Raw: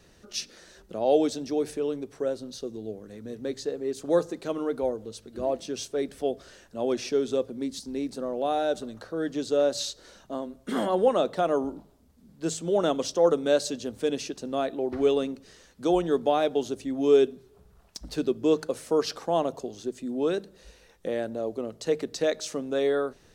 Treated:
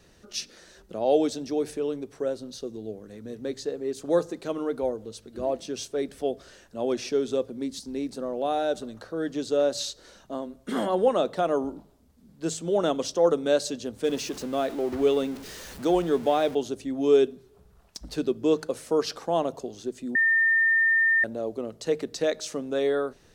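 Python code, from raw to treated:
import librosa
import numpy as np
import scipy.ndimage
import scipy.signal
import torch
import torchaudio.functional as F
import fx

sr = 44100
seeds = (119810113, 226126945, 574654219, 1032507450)

y = fx.zero_step(x, sr, step_db=-37.5, at=(14.04, 16.55))
y = fx.edit(y, sr, fx.bleep(start_s=20.15, length_s=1.09, hz=1810.0, db=-18.0), tone=tone)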